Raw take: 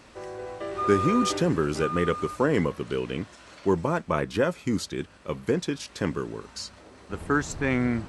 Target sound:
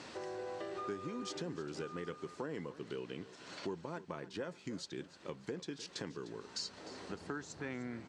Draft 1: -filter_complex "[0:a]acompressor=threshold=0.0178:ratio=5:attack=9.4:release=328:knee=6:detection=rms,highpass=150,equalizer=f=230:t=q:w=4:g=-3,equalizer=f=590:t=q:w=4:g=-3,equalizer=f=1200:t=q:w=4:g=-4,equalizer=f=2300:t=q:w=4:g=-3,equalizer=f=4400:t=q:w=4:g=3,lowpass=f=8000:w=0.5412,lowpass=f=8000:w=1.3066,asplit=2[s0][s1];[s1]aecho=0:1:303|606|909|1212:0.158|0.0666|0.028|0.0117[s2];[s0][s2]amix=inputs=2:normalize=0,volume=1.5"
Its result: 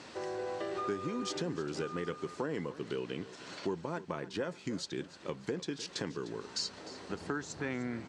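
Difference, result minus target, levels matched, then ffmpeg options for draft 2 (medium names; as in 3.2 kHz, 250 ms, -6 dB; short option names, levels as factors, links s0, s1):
compression: peak gain reduction -5.5 dB
-filter_complex "[0:a]acompressor=threshold=0.00794:ratio=5:attack=9.4:release=328:knee=6:detection=rms,highpass=150,equalizer=f=230:t=q:w=4:g=-3,equalizer=f=590:t=q:w=4:g=-3,equalizer=f=1200:t=q:w=4:g=-4,equalizer=f=2300:t=q:w=4:g=-3,equalizer=f=4400:t=q:w=4:g=3,lowpass=f=8000:w=0.5412,lowpass=f=8000:w=1.3066,asplit=2[s0][s1];[s1]aecho=0:1:303|606|909|1212:0.158|0.0666|0.028|0.0117[s2];[s0][s2]amix=inputs=2:normalize=0,volume=1.5"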